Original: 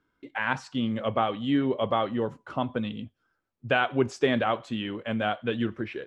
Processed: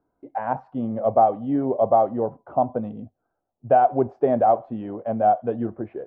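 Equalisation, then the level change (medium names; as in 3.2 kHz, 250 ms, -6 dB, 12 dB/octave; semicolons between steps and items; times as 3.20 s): resonant low-pass 720 Hz, resonance Q 4.9; 0.0 dB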